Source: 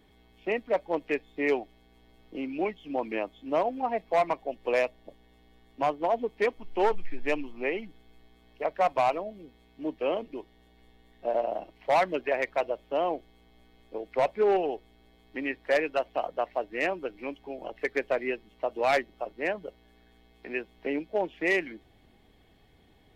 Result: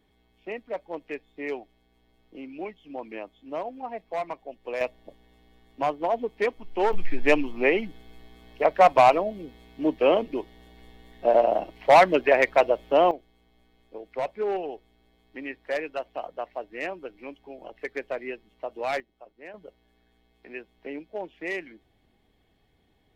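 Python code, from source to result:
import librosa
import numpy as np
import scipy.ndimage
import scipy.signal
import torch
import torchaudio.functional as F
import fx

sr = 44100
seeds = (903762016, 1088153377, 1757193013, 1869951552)

y = fx.gain(x, sr, db=fx.steps((0.0, -6.0), (4.81, 1.0), (6.93, 8.5), (13.11, -4.0), (19.0, -14.0), (19.54, -6.0)))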